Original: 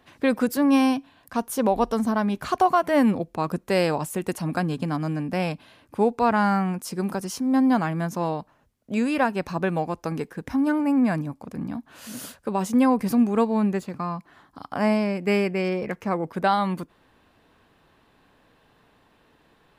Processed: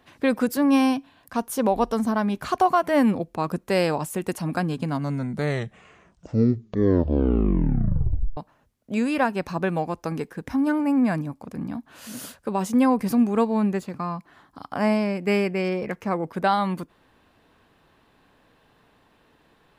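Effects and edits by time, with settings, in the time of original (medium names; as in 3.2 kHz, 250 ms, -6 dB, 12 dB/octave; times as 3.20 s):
4.74 s: tape stop 3.63 s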